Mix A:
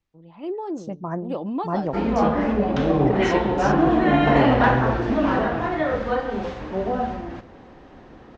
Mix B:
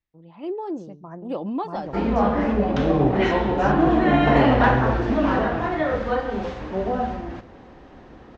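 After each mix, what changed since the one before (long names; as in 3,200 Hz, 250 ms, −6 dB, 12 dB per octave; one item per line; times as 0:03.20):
second voice −10.0 dB
master: add parametric band 60 Hz +5 dB 0.4 octaves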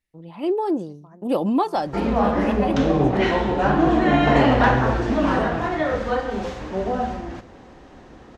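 first voice +7.0 dB
second voice −11.0 dB
master: remove high-frequency loss of the air 120 metres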